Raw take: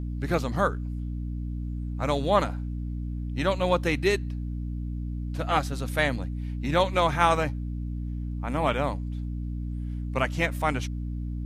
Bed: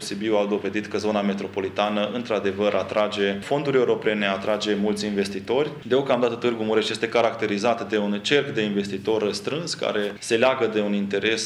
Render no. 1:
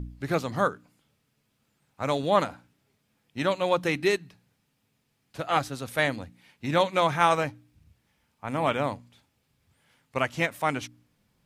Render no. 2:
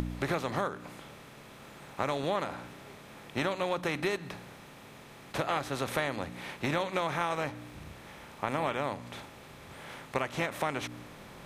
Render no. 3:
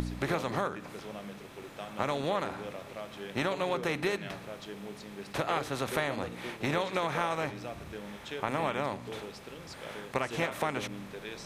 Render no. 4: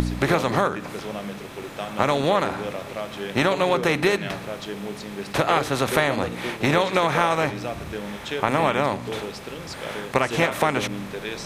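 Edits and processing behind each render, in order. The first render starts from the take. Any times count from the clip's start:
de-hum 60 Hz, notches 5
per-bin compression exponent 0.6; compressor 6:1, threshold -28 dBFS, peak gain reduction 13.5 dB
add bed -20.5 dB
gain +10.5 dB

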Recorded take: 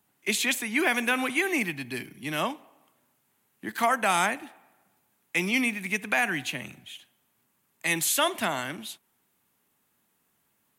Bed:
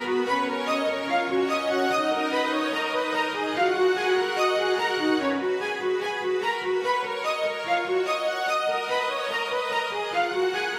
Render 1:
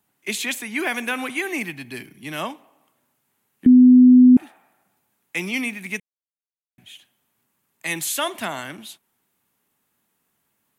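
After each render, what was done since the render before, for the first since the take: 3.66–4.37 bleep 251 Hz -6.5 dBFS; 6–6.78 mute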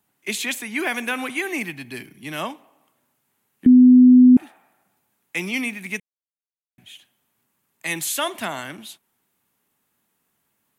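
nothing audible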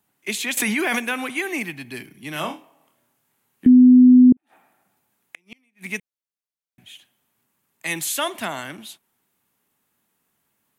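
0.57–0.99 fast leveller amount 100%; 2.33–3.68 flutter echo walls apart 4.4 m, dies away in 0.25 s; 4.32–5.92 flipped gate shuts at -18 dBFS, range -40 dB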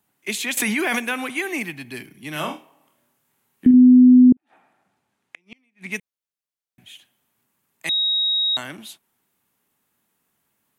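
2.28–3.74 doubler 46 ms -10.5 dB; 4.28–5.92 air absorption 67 m; 7.89–8.57 bleep 3790 Hz -17.5 dBFS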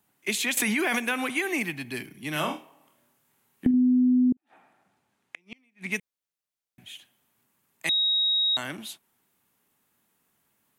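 compressor 3:1, threshold -23 dBFS, peak gain reduction 10.5 dB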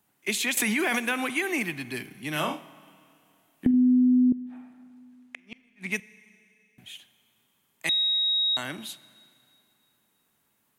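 Schroeder reverb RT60 2.7 s, combs from 32 ms, DRR 19 dB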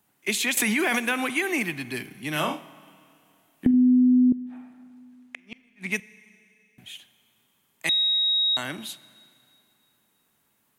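gain +2 dB

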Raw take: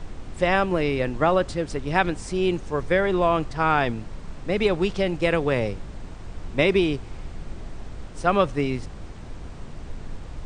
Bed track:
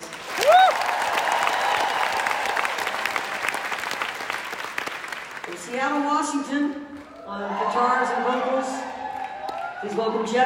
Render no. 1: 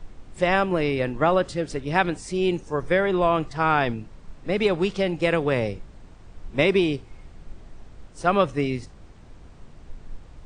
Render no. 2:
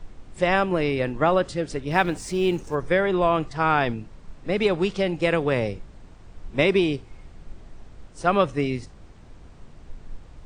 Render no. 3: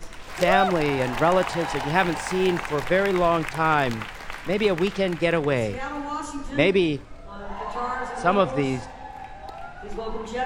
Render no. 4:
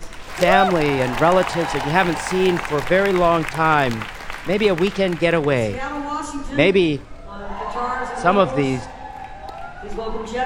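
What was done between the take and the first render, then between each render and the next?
noise print and reduce 9 dB
1.91–2.75 G.711 law mismatch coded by mu
add bed track -8 dB
gain +4.5 dB; limiter -1 dBFS, peak gain reduction 1 dB

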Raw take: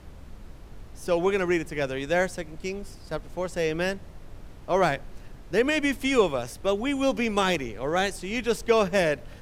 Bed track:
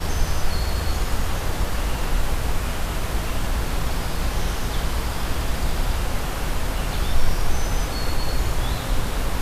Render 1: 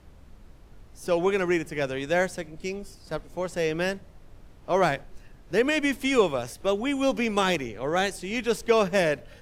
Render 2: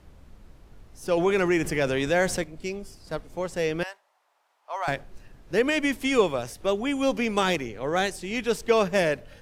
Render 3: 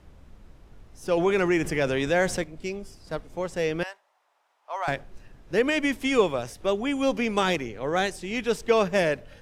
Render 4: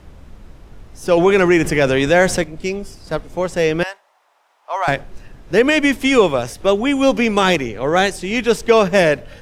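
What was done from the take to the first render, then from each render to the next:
noise print and reduce 6 dB
1.17–2.44 fast leveller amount 50%; 3.83–4.88 ladder high-pass 720 Hz, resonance 45%
high shelf 9600 Hz -6 dB; notch 4400 Hz, Q 27
gain +10 dB; limiter -2 dBFS, peak gain reduction 2.5 dB

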